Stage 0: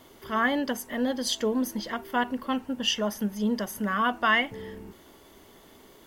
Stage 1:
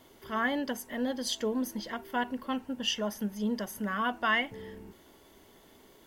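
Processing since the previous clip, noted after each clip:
notch filter 1,200 Hz, Q 14
level −4.5 dB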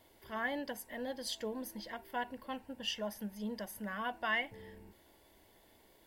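thirty-one-band graphic EQ 160 Hz −10 dB, 250 Hz −8 dB, 400 Hz −7 dB, 1,250 Hz −11 dB, 3,150 Hz −4 dB, 6,300 Hz −7 dB
level −4 dB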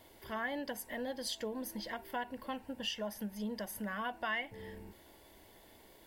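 downward compressor 2 to 1, threshold −44 dBFS, peak gain reduction 8.5 dB
level +5 dB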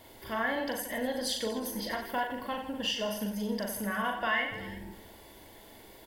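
reverse bouncing-ball delay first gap 40 ms, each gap 1.3×, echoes 5
level +5 dB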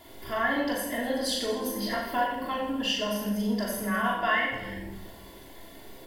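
rectangular room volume 1,000 cubic metres, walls furnished, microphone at 3.1 metres

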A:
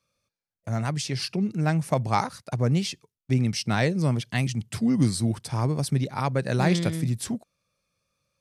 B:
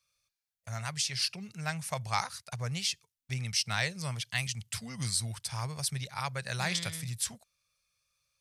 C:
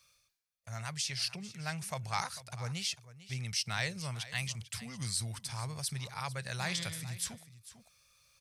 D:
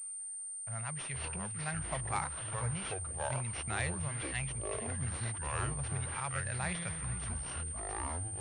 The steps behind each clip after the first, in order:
guitar amp tone stack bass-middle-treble 10-0-10; level +2.5 dB
transient designer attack −1 dB, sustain +4 dB; single-tap delay 447 ms −16 dB; reversed playback; upward compression, threshold −50 dBFS; reversed playback; level −3.5 dB
running median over 9 samples; delay with pitch and tempo change per echo 192 ms, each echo −6 semitones, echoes 2; switching amplifier with a slow clock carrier 8,900 Hz

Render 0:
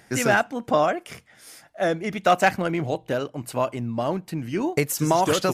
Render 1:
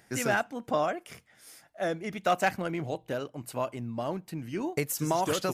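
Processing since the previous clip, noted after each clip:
high-shelf EQ 11,000 Hz +5.5 dB
level −7.5 dB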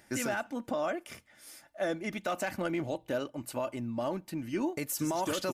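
comb filter 3.4 ms, depth 42%
brickwall limiter −23 dBFS, peak gain reduction 10.5 dB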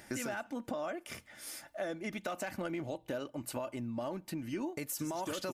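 downward compressor 3 to 1, threshold −45 dBFS, peak gain reduction 13 dB
level +6 dB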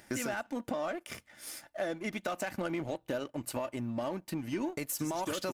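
power curve on the samples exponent 1.4
soft clipping −31.5 dBFS, distortion −19 dB
level +7.5 dB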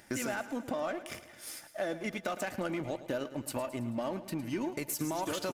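repeating echo 109 ms, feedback 57%, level −14 dB

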